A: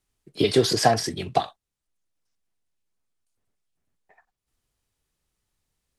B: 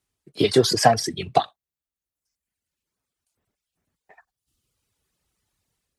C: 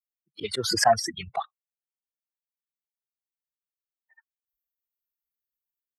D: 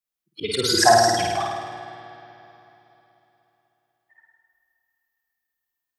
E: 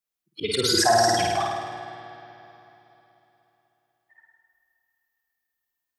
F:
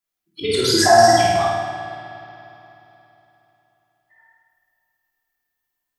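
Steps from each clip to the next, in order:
reverb removal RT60 1.1 s; HPF 52 Hz; AGC gain up to 6.5 dB
per-bin expansion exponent 2; band shelf 1100 Hz +11.5 dB; auto swell 0.186 s; gain +2 dB
flutter echo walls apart 9 m, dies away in 1.2 s; reverb RT60 3.4 s, pre-delay 59 ms, DRR 9 dB; gain +3.5 dB
limiter -10 dBFS, peak gain reduction 7 dB
shoebox room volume 480 m³, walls furnished, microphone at 3 m

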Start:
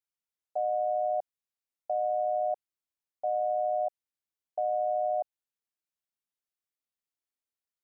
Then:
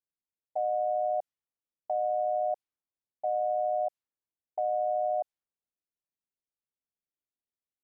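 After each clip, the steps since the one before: low-pass opened by the level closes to 540 Hz, open at -28.5 dBFS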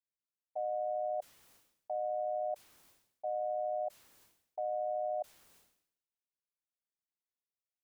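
dynamic EQ 590 Hz, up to +3 dB, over -40 dBFS, Q 4.7; sustainer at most 80 dB/s; gain -8.5 dB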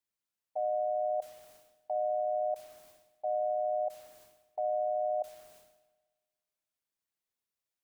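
spring tank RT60 1.4 s, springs 60 ms, chirp 55 ms, DRR 14 dB; gain +3.5 dB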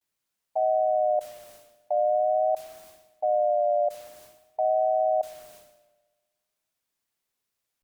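vibrato 0.46 Hz 57 cents; gain +8 dB

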